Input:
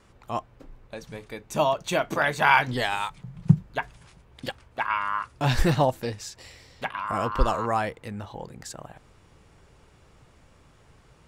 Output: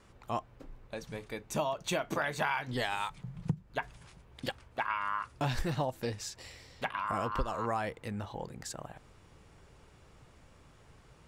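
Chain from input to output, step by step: compressor 8:1, threshold -26 dBFS, peak gain reduction 16.5 dB; gain -2.5 dB

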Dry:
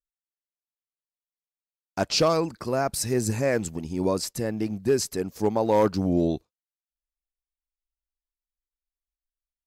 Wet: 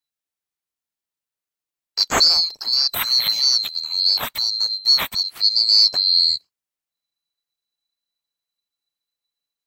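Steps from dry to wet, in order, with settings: band-swap scrambler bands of 4000 Hz; gain +6 dB

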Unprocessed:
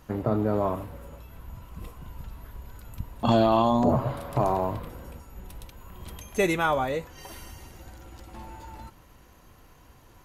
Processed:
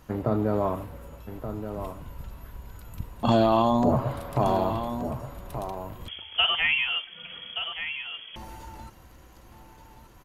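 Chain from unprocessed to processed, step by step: echo 1.176 s -9.5 dB; 6.08–8.36 inverted band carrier 3300 Hz

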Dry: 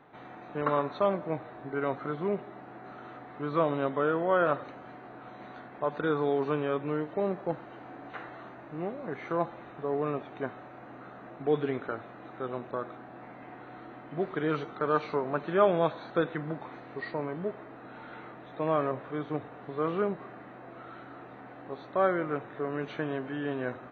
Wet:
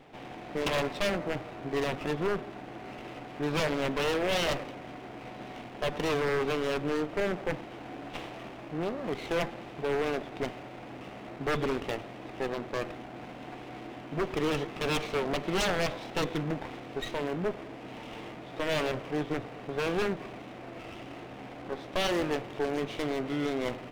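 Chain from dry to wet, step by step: minimum comb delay 0.31 ms; wavefolder -27 dBFS; gain +4.5 dB

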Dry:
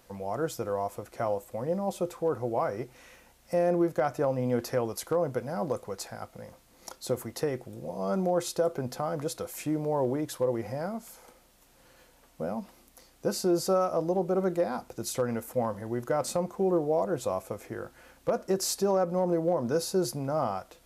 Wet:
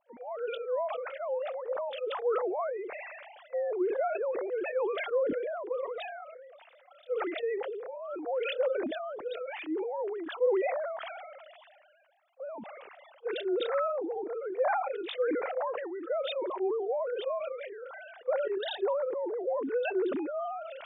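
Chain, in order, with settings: sine-wave speech; pre-echo 30 ms -22 dB; sustainer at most 28 dB/s; gain -6 dB

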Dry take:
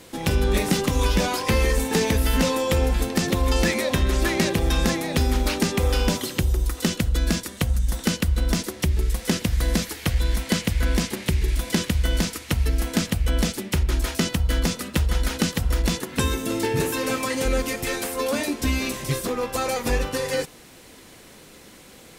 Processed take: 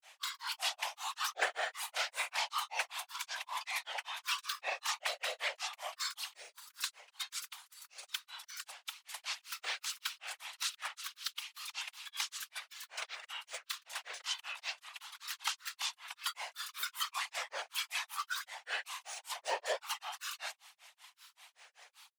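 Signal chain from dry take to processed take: rippled Chebyshev high-pass 770 Hz, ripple 6 dB; grains 0.185 s, grains 5.2/s, pitch spread up and down by 7 st; whisperiser; gain -2.5 dB

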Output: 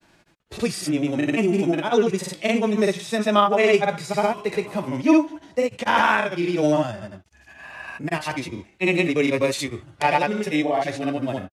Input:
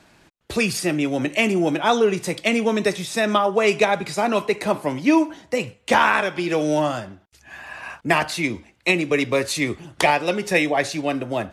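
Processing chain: grains, pitch spread up and down by 0 st; harmonic-percussive split percussive -10 dB; gain +2.5 dB

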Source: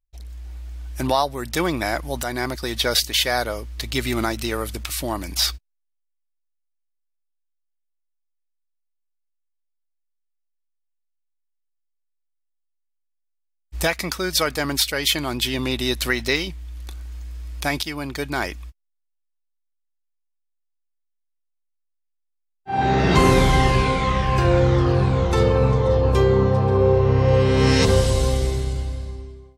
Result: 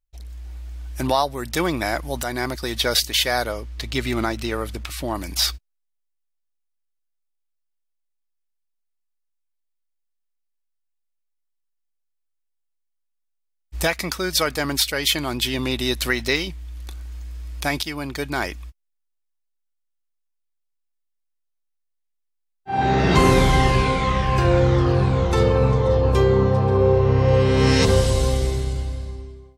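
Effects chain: 3.51–5.14 high shelf 9400 Hz -> 4700 Hz -9.5 dB

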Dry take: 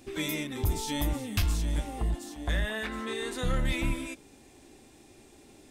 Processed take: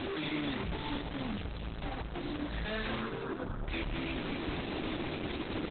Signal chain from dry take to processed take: infinite clipping; 1.69–2.52 dynamic EQ 120 Hz, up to +7 dB, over -55 dBFS, Q 2.6; limiter -37.5 dBFS, peak gain reduction 10 dB; 3.02–3.68 brick-wall FIR low-pass 1700 Hz; frequency-shifting echo 0.226 s, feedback 54%, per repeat -92 Hz, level -7 dB; reverb, pre-delay 3 ms, DRR 16.5 dB; crackling interface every 0.67 s, samples 256, repeat, from 0.95; gain +3 dB; Opus 8 kbps 48000 Hz

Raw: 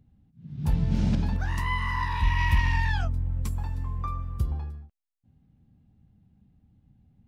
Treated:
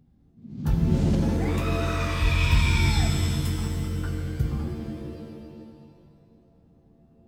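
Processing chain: formant shift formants +4 st; shimmer reverb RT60 2 s, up +7 st, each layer -2 dB, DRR 4.5 dB

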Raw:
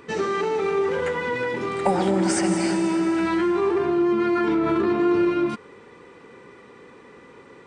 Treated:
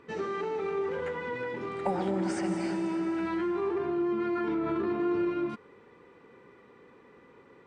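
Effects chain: LPF 2800 Hz 6 dB/oct; gain -8.5 dB

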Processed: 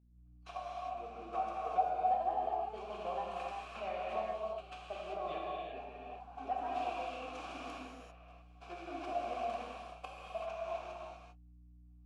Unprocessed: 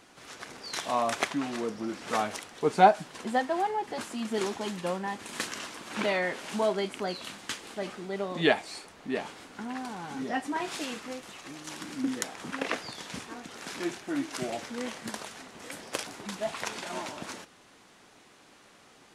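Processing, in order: recorder AGC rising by 6.1 dB/s; gate -32 dBFS, range -40 dB; low shelf 93 Hz -8.5 dB; compressor 2.5:1, threshold -25 dBFS, peak gain reduction 9 dB; step gate "xxxxx...xxxxxxxx" 83 bpm -12 dB; time stretch by phase-locked vocoder 0.63×; vowel filter a; hum 60 Hz, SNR 21 dB; non-linear reverb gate 0.42 s flat, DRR -5 dB; gain -4.5 dB

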